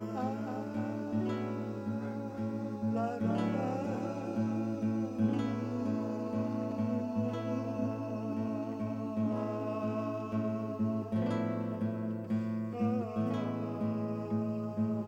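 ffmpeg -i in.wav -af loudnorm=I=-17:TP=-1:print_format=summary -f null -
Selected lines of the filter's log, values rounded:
Input Integrated:    -34.9 LUFS
Input True Peak:     -19.8 dBTP
Input LRA:             1.3 LU
Input Threshold:     -44.9 LUFS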